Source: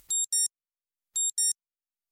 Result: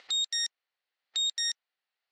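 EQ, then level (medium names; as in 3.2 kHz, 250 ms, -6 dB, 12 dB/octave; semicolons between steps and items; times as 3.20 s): cabinet simulation 450–4400 Hz, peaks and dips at 500 Hz +3 dB, 760 Hz +6 dB, 1.4 kHz +4 dB, 1.9 kHz +8 dB, 2.8 kHz +4 dB, 4.3 kHz +6 dB; +9.0 dB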